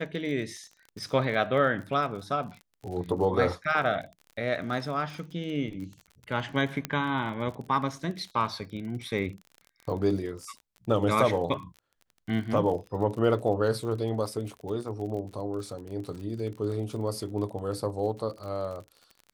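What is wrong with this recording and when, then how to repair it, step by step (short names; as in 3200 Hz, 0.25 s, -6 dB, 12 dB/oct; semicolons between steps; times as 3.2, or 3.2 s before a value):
crackle 39/s -37 dBFS
6.85 pop -14 dBFS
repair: de-click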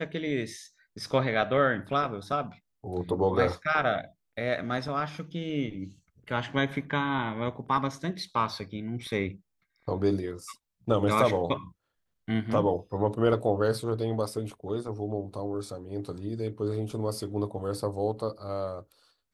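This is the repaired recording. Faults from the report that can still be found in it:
none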